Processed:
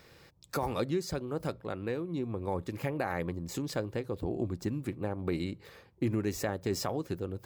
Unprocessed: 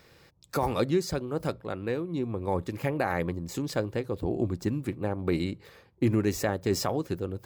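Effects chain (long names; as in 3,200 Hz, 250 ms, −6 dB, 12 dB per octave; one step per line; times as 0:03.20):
downward compressor 1.5 to 1, threshold −37 dBFS, peak gain reduction 6.5 dB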